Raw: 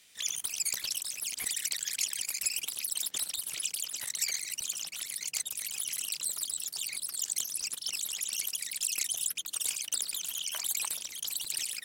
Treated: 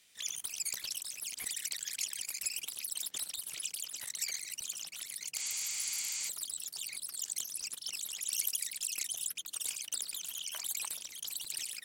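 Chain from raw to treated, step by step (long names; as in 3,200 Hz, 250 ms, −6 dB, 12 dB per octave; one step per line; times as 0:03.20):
0:05.42–0:06.26: healed spectral selection 810–9,600 Hz before
0:08.26–0:08.69: high-shelf EQ 5,700 Hz +7.5 dB
level −5 dB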